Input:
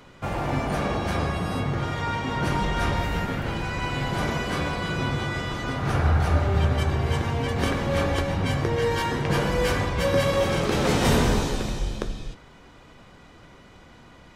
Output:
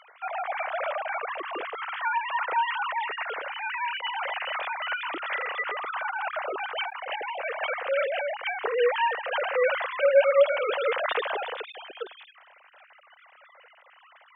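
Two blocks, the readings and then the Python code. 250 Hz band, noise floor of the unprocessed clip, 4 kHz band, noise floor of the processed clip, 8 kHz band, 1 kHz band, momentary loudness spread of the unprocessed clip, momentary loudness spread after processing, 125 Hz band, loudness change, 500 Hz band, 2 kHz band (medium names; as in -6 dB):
-25.0 dB, -50 dBFS, -4.0 dB, -57 dBFS, under -40 dB, 0.0 dB, 7 LU, 10 LU, under -40 dB, -2.5 dB, +0.5 dB, +1.0 dB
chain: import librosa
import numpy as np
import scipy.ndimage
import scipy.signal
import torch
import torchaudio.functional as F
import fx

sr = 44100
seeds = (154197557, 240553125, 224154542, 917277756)

y = fx.sine_speech(x, sr)
y = fx.highpass(y, sr, hz=670.0, slope=6)
y = y * librosa.db_to_amplitude(-1.0)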